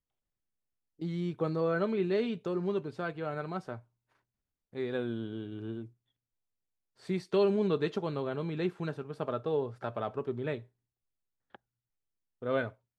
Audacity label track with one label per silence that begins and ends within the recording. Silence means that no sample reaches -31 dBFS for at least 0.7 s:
3.750000	4.770000	silence
5.780000	7.100000	silence
10.560000	12.440000	silence